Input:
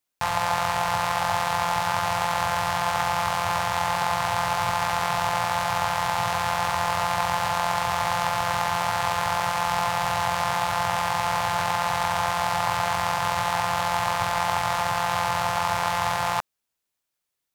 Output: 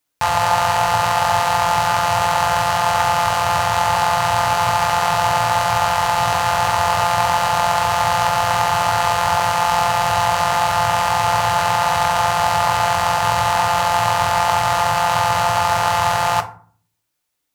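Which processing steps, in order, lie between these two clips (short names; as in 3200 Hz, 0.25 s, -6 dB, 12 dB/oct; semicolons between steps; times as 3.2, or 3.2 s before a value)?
FDN reverb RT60 0.46 s, low-frequency decay 1.55×, high-frequency decay 0.55×, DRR 4.5 dB; gain +6 dB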